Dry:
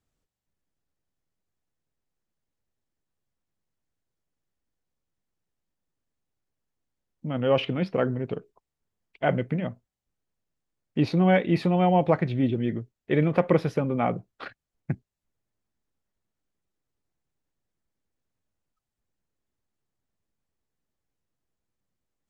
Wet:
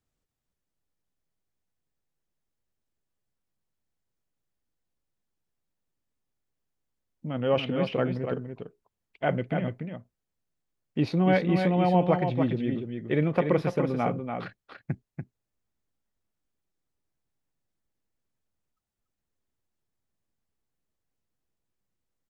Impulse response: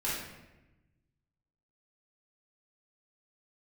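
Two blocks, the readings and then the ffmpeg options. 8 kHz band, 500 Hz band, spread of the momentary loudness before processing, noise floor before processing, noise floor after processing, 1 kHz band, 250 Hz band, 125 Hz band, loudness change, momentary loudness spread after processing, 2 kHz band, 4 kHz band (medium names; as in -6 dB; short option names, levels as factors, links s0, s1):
no reading, -1.5 dB, 15 LU, under -85 dBFS, -85 dBFS, -1.5 dB, -1.5 dB, -1.5 dB, -2.0 dB, 18 LU, -1.5 dB, -1.5 dB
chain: -af "aecho=1:1:289:0.501,volume=0.75"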